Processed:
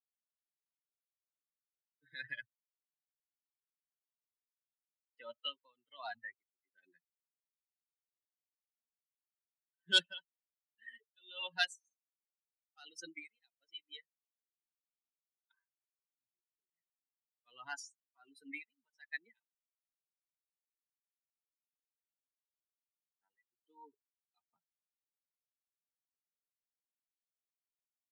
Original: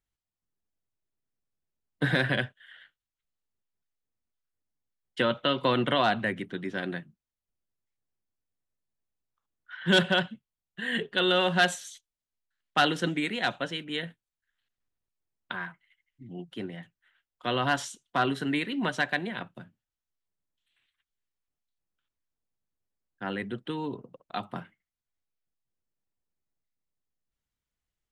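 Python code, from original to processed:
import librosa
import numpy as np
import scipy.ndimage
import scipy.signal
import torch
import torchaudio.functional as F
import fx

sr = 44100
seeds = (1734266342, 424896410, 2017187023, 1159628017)

y = fx.bin_expand(x, sr, power=3.0)
y = fx.weighting(y, sr, curve='ITU-R 468')
y = y * 10.0 ** (-36 * (0.5 - 0.5 * np.cos(2.0 * np.pi * 1.3 * np.arange(len(y)) / sr)) / 20.0)
y = y * 10.0 ** (-6.5 / 20.0)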